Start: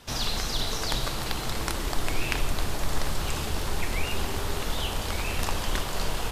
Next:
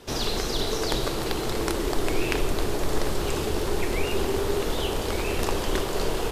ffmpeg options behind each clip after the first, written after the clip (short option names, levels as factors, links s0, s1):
-af "equalizer=f=390:w=1.4:g=12.5"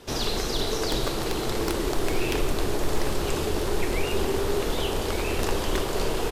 -af "aeval=exprs='0.168*(abs(mod(val(0)/0.168+3,4)-2)-1)':c=same,aecho=1:1:803:0.2"